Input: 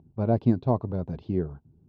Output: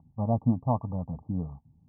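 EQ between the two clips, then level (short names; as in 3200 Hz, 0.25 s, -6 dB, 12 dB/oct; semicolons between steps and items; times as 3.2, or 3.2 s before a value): rippled Chebyshev low-pass 1200 Hz, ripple 6 dB; fixed phaser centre 900 Hz, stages 4; +4.5 dB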